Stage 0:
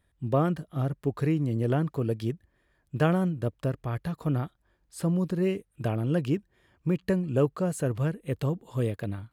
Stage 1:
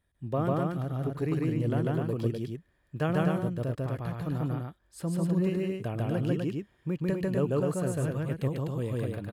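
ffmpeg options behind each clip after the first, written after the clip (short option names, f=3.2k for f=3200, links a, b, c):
-af "aecho=1:1:145.8|250.7:1|0.708,volume=-5.5dB"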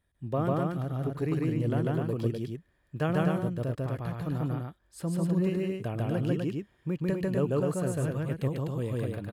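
-af anull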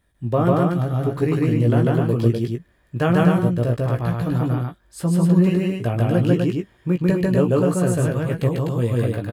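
-filter_complex "[0:a]asplit=2[a][b];[b]adelay=17,volume=-5.5dB[c];[a][c]amix=inputs=2:normalize=0,volume=9dB"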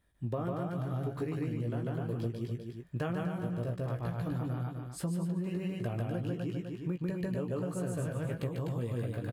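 -af "aecho=1:1:252:0.251,acompressor=threshold=-24dB:ratio=10,volume=-7dB"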